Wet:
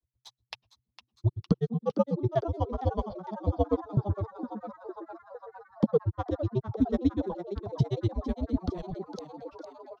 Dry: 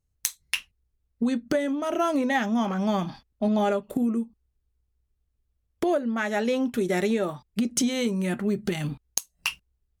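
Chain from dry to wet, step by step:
drawn EQ curve 130 Hz 0 dB, 350 Hz +6 dB, 5,000 Hz −5 dB, 8,700 Hz −29 dB
granular cloud 62 ms, grains 8.1 per second, spray 10 ms, pitch spread up and down by 0 semitones
flat-topped bell 2,100 Hz −14.5 dB 1.2 octaves
frequency shifter −130 Hz
high-pass filter 49 Hz 6 dB per octave
echo with shifted repeats 457 ms, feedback 65%, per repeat +120 Hz, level −11.5 dB

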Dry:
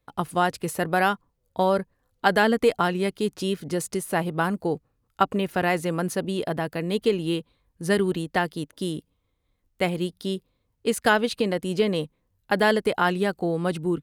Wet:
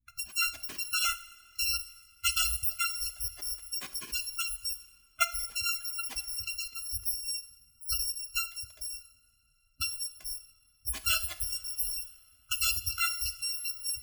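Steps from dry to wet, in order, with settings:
samples in bit-reversed order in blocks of 256 samples
gate on every frequency bin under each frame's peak −15 dB strong
high-shelf EQ 3,800 Hz −11 dB
coupled-rooms reverb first 0.52 s, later 4.6 s, from −18 dB, DRR 10 dB
one half of a high-frequency compander decoder only

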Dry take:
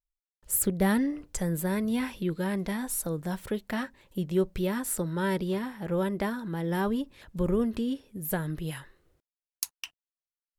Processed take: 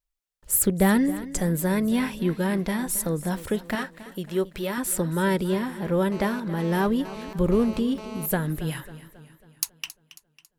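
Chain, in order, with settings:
0:03.75–0:04.78: low-shelf EQ 270 Hz −12 dB
0:06.12–0:08.26: phone interference −45 dBFS
feedback echo with a swinging delay time 273 ms, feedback 51%, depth 66 cents, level −16 dB
level +5 dB

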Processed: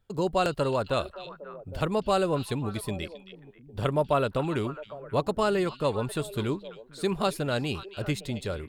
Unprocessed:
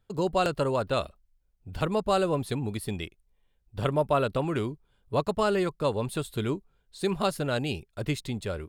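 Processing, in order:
echo through a band-pass that steps 269 ms, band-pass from 3,500 Hz, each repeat −1.4 octaves, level −9 dB

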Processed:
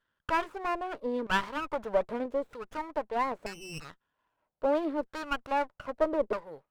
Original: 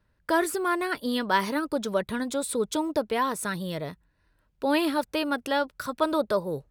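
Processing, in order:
notch filter 360 Hz, Q 12
0:01.64–0:02.26: leveller curve on the samples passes 1
auto-filter band-pass saw down 0.79 Hz 390–1,700 Hz
0:03.46–0:03.90: voice inversion scrambler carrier 3,200 Hz
windowed peak hold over 9 samples
level +2.5 dB

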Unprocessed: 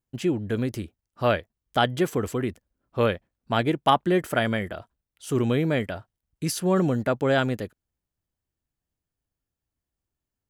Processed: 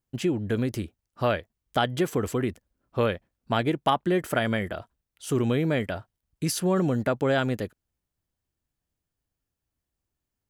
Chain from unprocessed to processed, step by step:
downward compressor 2 to 1, threshold −24 dBFS, peak gain reduction 6 dB
level +1.5 dB

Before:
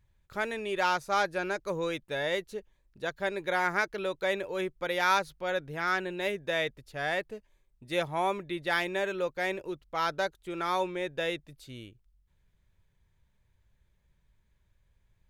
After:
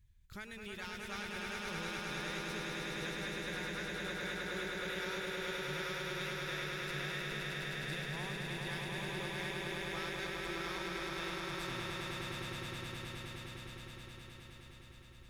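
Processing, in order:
guitar amp tone stack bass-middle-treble 6-0-2
downward compressor, threshold −59 dBFS, peak gain reduction 15.5 dB
echo that builds up and dies away 104 ms, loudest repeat 8, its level −3.5 dB
level +14.5 dB

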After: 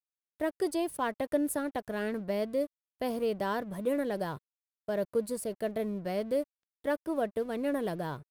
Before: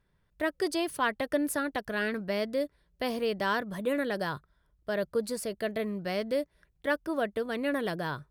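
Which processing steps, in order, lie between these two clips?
flat-topped bell 2,700 Hz −8 dB 2.7 octaves
dead-zone distortion −55 dBFS

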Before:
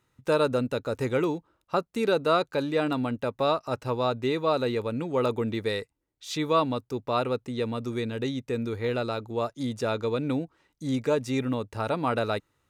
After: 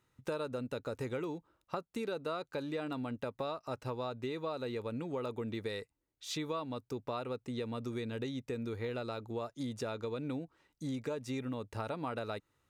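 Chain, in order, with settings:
downward compressor, threshold −31 dBFS, peak gain reduction 12.5 dB
level −4 dB

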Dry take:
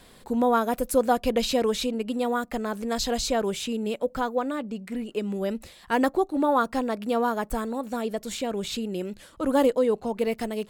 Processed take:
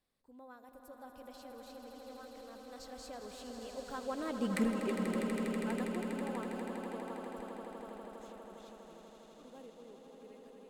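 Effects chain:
source passing by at 0:04.55, 22 m/s, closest 1.1 metres
echo that builds up and dies away 81 ms, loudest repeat 8, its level −9 dB
level +6.5 dB

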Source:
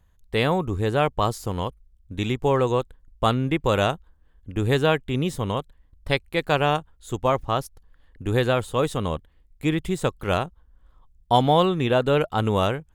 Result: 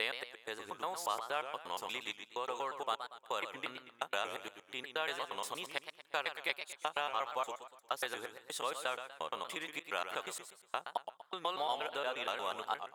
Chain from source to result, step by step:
slices reordered back to front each 118 ms, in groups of 4
downward compressor, threshold −24 dBFS, peak gain reduction 11 dB
high-pass filter 880 Hz 12 dB per octave
feedback echo with a swinging delay time 119 ms, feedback 40%, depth 167 cents, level −9 dB
level −3 dB

